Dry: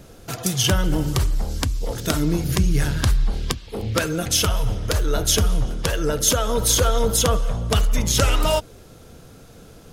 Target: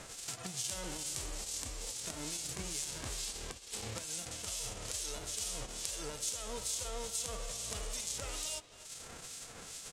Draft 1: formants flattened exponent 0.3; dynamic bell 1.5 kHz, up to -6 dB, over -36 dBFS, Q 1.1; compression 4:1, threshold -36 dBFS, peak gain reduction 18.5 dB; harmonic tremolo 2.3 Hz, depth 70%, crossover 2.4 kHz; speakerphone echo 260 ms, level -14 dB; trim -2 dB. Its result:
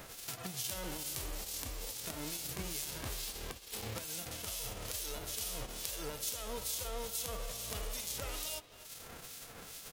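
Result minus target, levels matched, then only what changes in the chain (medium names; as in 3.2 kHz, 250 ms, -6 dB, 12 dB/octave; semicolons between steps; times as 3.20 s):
8 kHz band -2.5 dB
add after dynamic bell: resonant low-pass 7.9 kHz, resonance Q 2.2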